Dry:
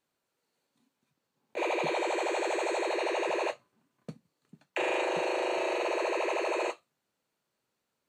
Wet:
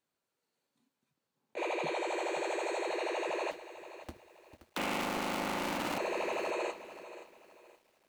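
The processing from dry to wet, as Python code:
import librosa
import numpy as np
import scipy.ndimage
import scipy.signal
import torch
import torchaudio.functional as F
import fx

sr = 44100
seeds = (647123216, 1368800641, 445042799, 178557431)

y = fx.cycle_switch(x, sr, every=2, mode='inverted', at=(3.51, 5.98))
y = fx.echo_crushed(y, sr, ms=525, feedback_pct=35, bits=9, wet_db=-13.5)
y = y * librosa.db_to_amplitude(-4.5)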